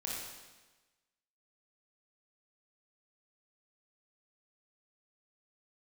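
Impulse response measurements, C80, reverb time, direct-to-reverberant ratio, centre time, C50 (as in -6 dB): 1.5 dB, 1.2 s, -4.5 dB, 85 ms, -1.5 dB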